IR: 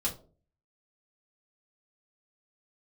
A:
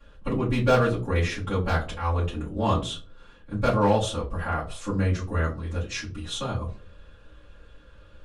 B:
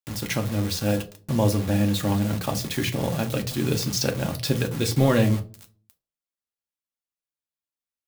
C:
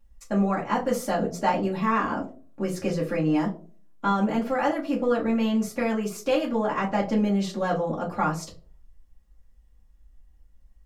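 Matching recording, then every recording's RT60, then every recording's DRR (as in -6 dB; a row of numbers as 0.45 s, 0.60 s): C; 0.40 s, 0.40 s, 0.40 s; -11.5 dB, 4.0 dB, -5.0 dB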